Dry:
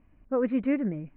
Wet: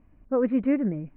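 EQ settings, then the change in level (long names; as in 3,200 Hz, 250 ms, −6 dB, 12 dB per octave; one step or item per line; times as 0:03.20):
high-shelf EQ 2,300 Hz −9.5 dB
+3.0 dB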